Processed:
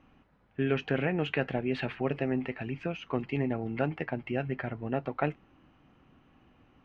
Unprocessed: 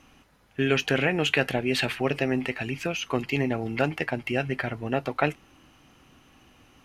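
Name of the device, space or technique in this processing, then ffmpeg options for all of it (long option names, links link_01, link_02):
phone in a pocket: -af "lowpass=3300,equalizer=frequency=180:width_type=o:width=0.77:gain=3,highshelf=frequency=2400:gain=-10,volume=-4.5dB"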